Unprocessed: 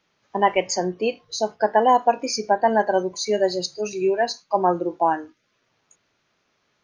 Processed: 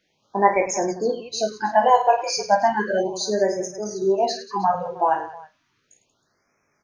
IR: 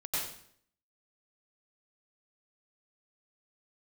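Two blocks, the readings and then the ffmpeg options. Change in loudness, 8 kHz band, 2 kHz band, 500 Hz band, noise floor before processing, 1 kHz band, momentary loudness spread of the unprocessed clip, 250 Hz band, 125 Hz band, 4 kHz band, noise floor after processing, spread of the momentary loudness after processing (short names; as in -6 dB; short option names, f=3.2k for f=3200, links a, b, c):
+0.5 dB, +1.0 dB, +0.5 dB, 0.0 dB, -70 dBFS, +1.0 dB, 8 LU, -1.5 dB, -1.0 dB, -1.0 dB, -70 dBFS, 9 LU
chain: -af "aecho=1:1:20|52|103.2|185.1|316.2:0.631|0.398|0.251|0.158|0.1,afftfilt=real='re*(1-between(b*sr/1024,230*pow(3700/230,0.5+0.5*sin(2*PI*0.34*pts/sr))/1.41,230*pow(3700/230,0.5+0.5*sin(2*PI*0.34*pts/sr))*1.41))':imag='im*(1-between(b*sr/1024,230*pow(3700/230,0.5+0.5*sin(2*PI*0.34*pts/sr))/1.41,230*pow(3700/230,0.5+0.5*sin(2*PI*0.34*pts/sr))*1.41))':win_size=1024:overlap=0.75,volume=-1dB"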